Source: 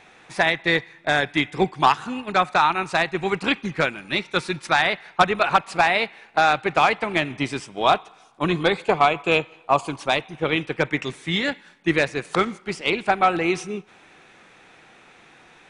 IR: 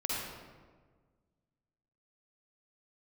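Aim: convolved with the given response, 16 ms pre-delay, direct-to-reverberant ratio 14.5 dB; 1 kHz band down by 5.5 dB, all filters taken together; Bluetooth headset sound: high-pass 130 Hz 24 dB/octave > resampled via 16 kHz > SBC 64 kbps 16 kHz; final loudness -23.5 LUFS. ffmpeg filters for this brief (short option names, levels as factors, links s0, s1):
-filter_complex "[0:a]equalizer=f=1000:t=o:g=-8,asplit=2[s0][s1];[1:a]atrim=start_sample=2205,adelay=16[s2];[s1][s2]afir=irnorm=-1:irlink=0,volume=0.1[s3];[s0][s3]amix=inputs=2:normalize=0,highpass=f=130:w=0.5412,highpass=f=130:w=1.3066,aresample=16000,aresample=44100,volume=1.06" -ar 16000 -c:a sbc -b:a 64k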